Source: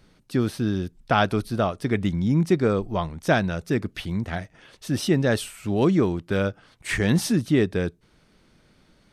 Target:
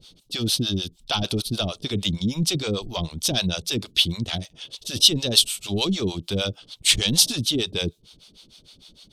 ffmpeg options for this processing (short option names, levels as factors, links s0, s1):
-filter_complex "[0:a]apsyclip=11.2,acrossover=split=530[s0][s1];[s0]aeval=exprs='val(0)*(1-1/2+1/2*cos(2*PI*6.6*n/s))':c=same[s2];[s1]aeval=exprs='val(0)*(1-1/2-1/2*cos(2*PI*6.6*n/s))':c=same[s3];[s2][s3]amix=inputs=2:normalize=0,highshelf=f=2500:t=q:w=3:g=11.5,volume=0.158"